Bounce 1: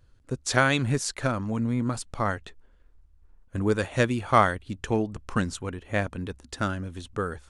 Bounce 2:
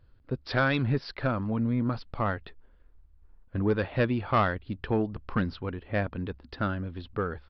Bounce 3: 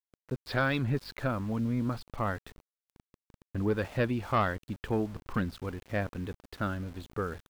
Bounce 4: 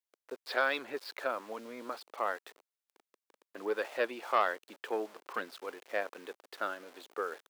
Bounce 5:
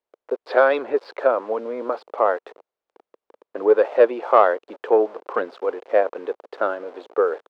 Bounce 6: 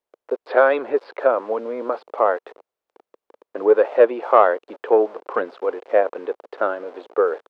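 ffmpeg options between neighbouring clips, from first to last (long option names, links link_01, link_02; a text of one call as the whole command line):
ffmpeg -i in.wav -af "aresample=11025,asoftclip=type=tanh:threshold=-15.5dB,aresample=44100,highshelf=frequency=3500:gain=-8.5" out.wav
ffmpeg -i in.wav -af "aeval=exprs='val(0)+0.00251*(sin(2*PI*50*n/s)+sin(2*PI*2*50*n/s)/2+sin(2*PI*3*50*n/s)/3+sin(2*PI*4*50*n/s)/4+sin(2*PI*5*50*n/s)/5)':channel_layout=same,aeval=exprs='val(0)*gte(abs(val(0)),0.00708)':channel_layout=same,volume=-3dB" out.wav
ffmpeg -i in.wav -af "highpass=frequency=410:width=0.5412,highpass=frequency=410:width=1.3066" out.wav
ffmpeg -i in.wav -af "firequalizer=gain_entry='entry(150,0);entry(470,13);entry(700,9);entry(1800,-2);entry(12000,-28)':delay=0.05:min_phase=1,volume=7dB" out.wav
ffmpeg -i in.wav -filter_complex "[0:a]acrossover=split=3700[link_01][link_02];[link_02]acompressor=threshold=-60dB:ratio=4:attack=1:release=60[link_03];[link_01][link_03]amix=inputs=2:normalize=0,volume=1dB" out.wav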